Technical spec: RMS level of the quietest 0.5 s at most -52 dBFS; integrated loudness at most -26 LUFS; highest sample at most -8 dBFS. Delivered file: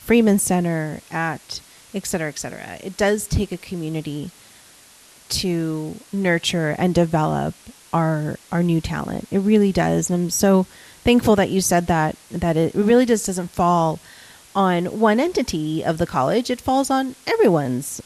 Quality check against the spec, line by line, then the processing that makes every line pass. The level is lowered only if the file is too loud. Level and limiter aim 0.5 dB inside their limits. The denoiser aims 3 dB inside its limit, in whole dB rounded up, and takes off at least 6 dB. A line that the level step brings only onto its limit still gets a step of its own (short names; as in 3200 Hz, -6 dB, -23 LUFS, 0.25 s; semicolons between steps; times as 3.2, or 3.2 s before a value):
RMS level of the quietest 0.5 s -49 dBFS: fail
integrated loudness -20.5 LUFS: fail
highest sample -5.0 dBFS: fail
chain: gain -6 dB